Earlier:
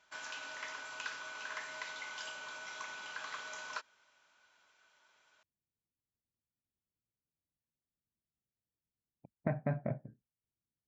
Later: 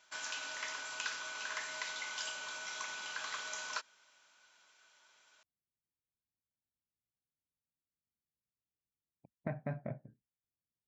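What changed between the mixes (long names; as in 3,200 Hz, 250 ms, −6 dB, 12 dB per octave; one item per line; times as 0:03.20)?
speech −5.0 dB
master: add high-shelf EQ 3,700 Hz +10 dB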